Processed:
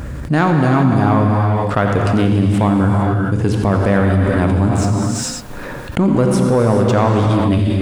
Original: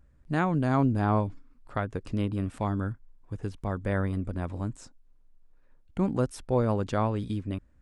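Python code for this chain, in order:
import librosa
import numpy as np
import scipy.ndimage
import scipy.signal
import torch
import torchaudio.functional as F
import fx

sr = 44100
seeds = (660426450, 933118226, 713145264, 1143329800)

p1 = scipy.signal.sosfilt(scipy.signal.butter(2, 76.0, 'highpass', fs=sr, output='sos'), x)
p2 = fx.rider(p1, sr, range_db=10, speed_s=0.5)
p3 = p1 + F.gain(torch.from_numpy(p2), 2.0).numpy()
p4 = fx.leveller(p3, sr, passes=1)
p5 = p4 + fx.echo_single(p4, sr, ms=87, db=-12.5, dry=0)
p6 = fx.rev_gated(p5, sr, seeds[0], gate_ms=470, shape='flat', drr_db=2.0)
p7 = fx.env_flatten(p6, sr, amount_pct=70)
y = F.gain(torch.from_numpy(p7), -2.0).numpy()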